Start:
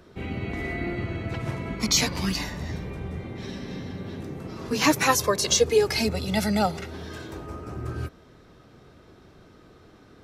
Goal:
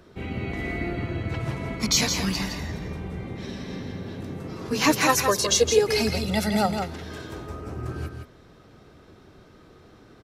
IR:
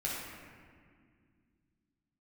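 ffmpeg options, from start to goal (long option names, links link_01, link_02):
-af "aecho=1:1:165:0.473"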